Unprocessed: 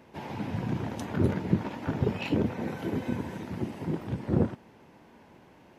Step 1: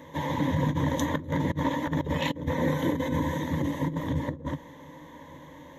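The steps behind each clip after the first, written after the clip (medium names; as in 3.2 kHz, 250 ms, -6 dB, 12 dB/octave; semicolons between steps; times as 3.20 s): rippled EQ curve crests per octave 1.1, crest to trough 16 dB; compressor with a negative ratio -29 dBFS, ratio -0.5; trim +2.5 dB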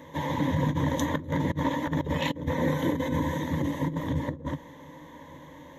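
no audible change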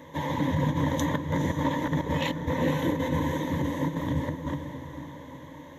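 echo that smears into a reverb 475 ms, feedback 42%, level -8.5 dB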